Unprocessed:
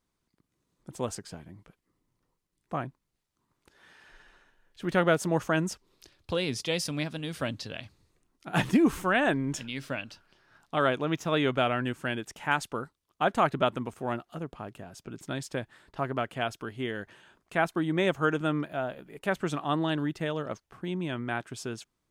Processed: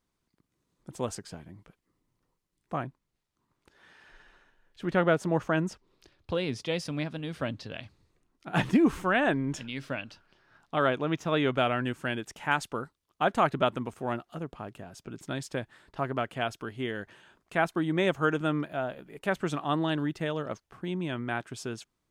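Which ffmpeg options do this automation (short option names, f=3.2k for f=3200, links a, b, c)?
-af "asetnsamples=n=441:p=0,asendcmd='2.83 lowpass f 5800;4.88 lowpass f 2500;7.72 lowpass f 4500;11.55 lowpass f 12000',lowpass=f=12k:p=1"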